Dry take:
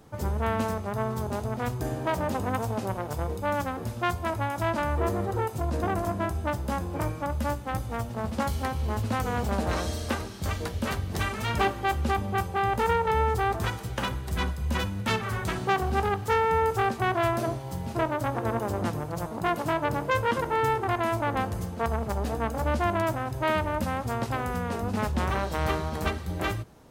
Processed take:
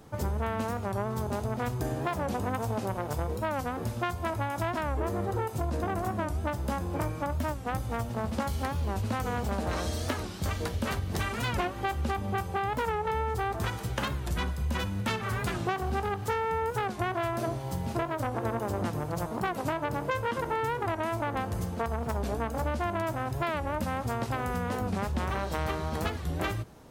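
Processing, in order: compression, threshold -28 dBFS, peak gain reduction 9 dB; warped record 45 rpm, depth 160 cents; trim +1.5 dB

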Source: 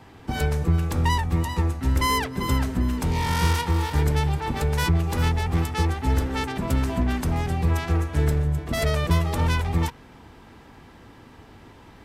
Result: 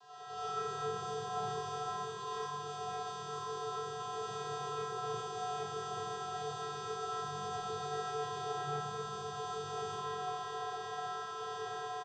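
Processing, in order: differentiator; compression, threshold -37 dBFS, peak gain reduction 11 dB; peak limiter -33.5 dBFS, peak gain reduction 12 dB; level rider gain up to 9 dB; sine folder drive 18 dB, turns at -28 dBFS; chord resonator F#2 major, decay 0.84 s; vocoder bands 16, square 147 Hz; distance through air 130 m; static phaser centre 580 Hz, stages 6; delay 590 ms -12 dB; reverberation RT60 0.80 s, pre-delay 50 ms, DRR -8 dB; trim +12.5 dB

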